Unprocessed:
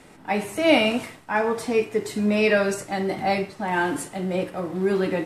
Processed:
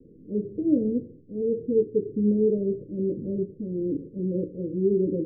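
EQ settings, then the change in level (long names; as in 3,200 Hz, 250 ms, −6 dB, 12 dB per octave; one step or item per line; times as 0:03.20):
Butterworth low-pass 510 Hz 96 dB per octave
0.0 dB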